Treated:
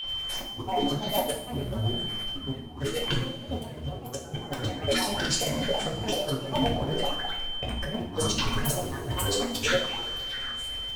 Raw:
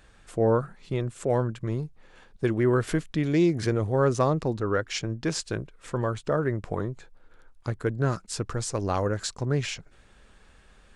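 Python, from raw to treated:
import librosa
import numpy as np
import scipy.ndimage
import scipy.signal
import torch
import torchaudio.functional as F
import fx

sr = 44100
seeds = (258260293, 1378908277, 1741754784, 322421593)

p1 = fx.spec_quant(x, sr, step_db=15)
p2 = fx.echo_stepped(p1, sr, ms=234, hz=400.0, octaves=1.4, feedback_pct=70, wet_db=-8)
p3 = fx.quant_companded(p2, sr, bits=4)
p4 = p2 + F.gain(torch.from_numpy(p3), -10.5).numpy()
p5 = fx.granulator(p4, sr, seeds[0], grain_ms=100.0, per_s=20.0, spray_ms=100.0, spread_st=12)
p6 = p5 + 10.0 ** (-38.0 / 20.0) * np.sin(2.0 * np.pi * 3100.0 * np.arange(len(p5)) / sr)
p7 = fx.over_compress(p6, sr, threshold_db=-32.0, ratio=-0.5)
y = fx.rev_double_slope(p7, sr, seeds[1], early_s=0.48, late_s=3.1, knee_db=-19, drr_db=-2.0)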